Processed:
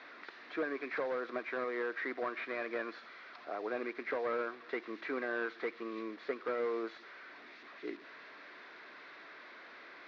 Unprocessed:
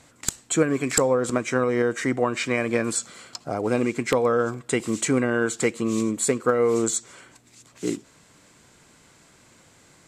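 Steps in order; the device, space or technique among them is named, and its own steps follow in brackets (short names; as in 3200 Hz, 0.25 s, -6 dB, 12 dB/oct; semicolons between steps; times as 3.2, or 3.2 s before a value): digital answering machine (BPF 360–3200 Hz; delta modulation 32 kbps, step -37.5 dBFS; speaker cabinet 360–3700 Hz, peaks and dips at 510 Hz -6 dB, 840 Hz -7 dB, 1800 Hz +4 dB, 3000 Hz -9 dB); gain -7 dB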